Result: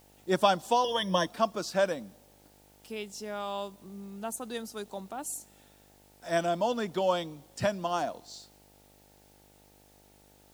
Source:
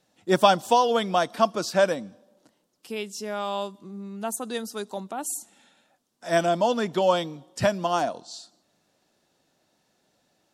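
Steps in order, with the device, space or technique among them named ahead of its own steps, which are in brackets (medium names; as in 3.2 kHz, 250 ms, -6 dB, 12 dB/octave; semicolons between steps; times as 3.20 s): video cassette with head-switching buzz (mains buzz 50 Hz, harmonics 18, -56 dBFS -2 dB/octave; white noise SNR 31 dB); 0.84–1.27 s: rippled EQ curve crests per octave 1.2, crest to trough 17 dB; trim -6 dB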